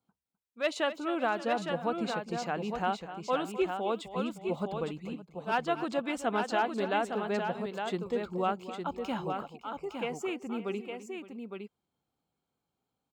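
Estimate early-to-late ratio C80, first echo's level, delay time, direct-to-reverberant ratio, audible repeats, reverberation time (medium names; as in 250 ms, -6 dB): no reverb, -13.5 dB, 255 ms, no reverb, 3, no reverb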